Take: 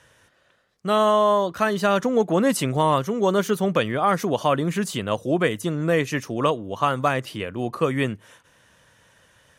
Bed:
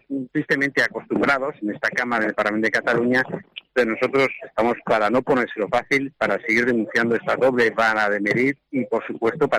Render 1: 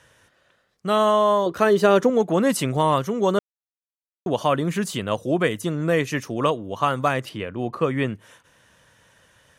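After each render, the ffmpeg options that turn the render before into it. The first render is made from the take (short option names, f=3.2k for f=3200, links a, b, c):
-filter_complex "[0:a]asettb=1/sr,asplit=3[a][b][c];[a]atrim=end=1.464[d];[b]atrim=start=1.46:end=2.1,asetpts=PTS-STARTPTS,afade=t=in:d=0.004:c=qsin,afade=t=out:st=0.636:d=0.004:c=qsin,equalizer=f=400:w=1.6:g=10[e];[c]atrim=start=2.096[f];[d][e]acrossfade=d=0.004:c1=hsin:c2=qsin[g];[g][f]acrossfade=d=0.004:c1=qsin:c2=hsin,asettb=1/sr,asplit=3[h][i][j];[h]atrim=end=7.294[k];[i]atrim=start=7.29:end=8.13,asetpts=PTS-STARTPTS,afade=t=in:d=0.004:c=qsin,afade=t=out:st=0.836:d=0.004:c=qsin,lowpass=f=3.3k:p=1[l];[j]atrim=start=8.126[m];[k][l]acrossfade=d=0.004:c1=hsin:c2=qsin[n];[n][m]acrossfade=d=0.004:c1=qsin:c2=hsin,asplit=3[o][p][q];[o]atrim=end=3.39,asetpts=PTS-STARTPTS,afade=t=out:st=3.386:d=0.004:c=hsin[r];[p]atrim=start=3.39:end=4.26,asetpts=PTS-STARTPTS,volume=0[s];[q]atrim=start=4.26,asetpts=PTS-STARTPTS,afade=t=in:d=0.004:c=hsin[t];[r][s][t]concat=n=3:v=0:a=1"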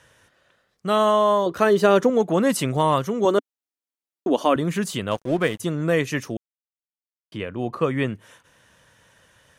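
-filter_complex "[0:a]asettb=1/sr,asplit=3[a][b][c];[a]atrim=end=3.254[d];[b]atrim=start=3.25:end=4.56,asetpts=PTS-STARTPTS,afade=t=in:d=0.004:c=qsin,afade=t=out:st=1.306:d=0.004:c=qsin,lowshelf=f=190:t=q:w=3:g=-11.5[e];[c]atrim=start=4.556[f];[d][e]acrossfade=d=0.004:c1=hsin:c2=qsin[g];[g][f]acrossfade=d=0.004:c1=qsin:c2=hsin,asettb=1/sr,asplit=3[h][i][j];[h]atrim=end=5.114[k];[i]atrim=start=5.11:end=5.6,asetpts=PTS-STARTPTS,afade=t=in:d=0.004:c=qsin,afade=t=out:st=0.486:d=0.004:c=qsin,aeval=exprs='sgn(val(0))*max(abs(val(0))-0.0119,0)':c=same[l];[j]atrim=start=5.596[m];[k][l]acrossfade=d=0.004:c1=hsin:c2=qsin[n];[n][m]acrossfade=d=0.004:c1=qsin:c2=hsin,asplit=3[o][p][q];[o]atrim=end=6.37,asetpts=PTS-STARTPTS,afade=t=out:st=6.366:d=0.004:c=hsin[r];[p]atrim=start=6.37:end=7.32,asetpts=PTS-STARTPTS,volume=0[s];[q]atrim=start=7.32,asetpts=PTS-STARTPTS,afade=t=in:d=0.004:c=hsin[t];[r][s][t]concat=n=3:v=0:a=1"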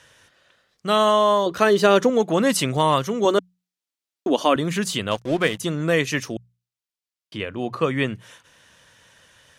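-af "equalizer=f=4.2k:t=o:w=2.2:g=6.5,bandreject=f=60:t=h:w=6,bandreject=f=120:t=h:w=6,bandreject=f=180:t=h:w=6"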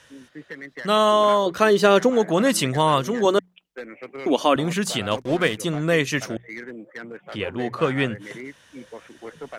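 -filter_complex "[1:a]volume=-17.5dB[a];[0:a][a]amix=inputs=2:normalize=0"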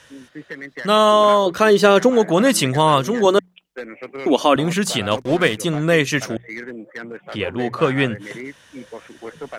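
-af "volume=4dB,alimiter=limit=-2dB:level=0:latency=1"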